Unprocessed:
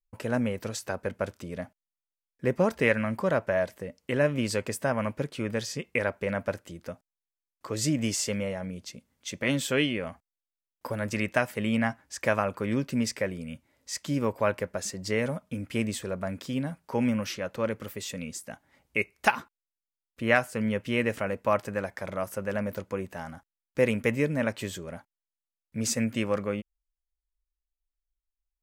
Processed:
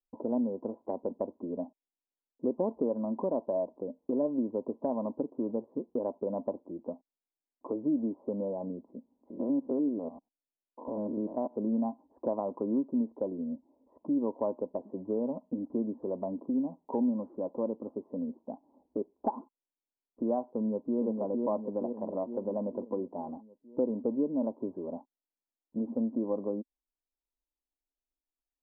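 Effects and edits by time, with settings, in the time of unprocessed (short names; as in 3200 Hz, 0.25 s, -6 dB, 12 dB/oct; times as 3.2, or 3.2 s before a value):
9.3–11.56 stepped spectrum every 0.1 s
20.51–21 echo throw 0.46 s, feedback 55%, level -3.5 dB
whole clip: Chebyshev low-pass 1000 Hz, order 6; resonant low shelf 180 Hz -13 dB, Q 3; compressor 2:1, threshold -33 dBFS; gain +1 dB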